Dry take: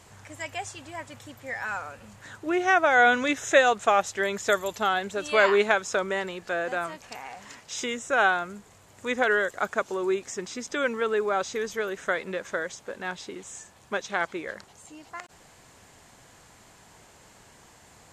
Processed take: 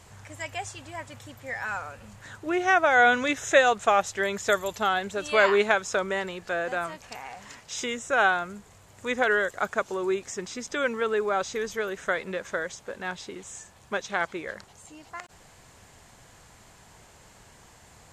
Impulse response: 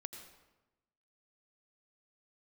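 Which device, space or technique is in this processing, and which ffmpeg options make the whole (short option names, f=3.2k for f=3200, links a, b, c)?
low shelf boost with a cut just above: -af "lowshelf=f=98:g=7,equalizer=f=290:t=o:w=0.77:g=-2.5"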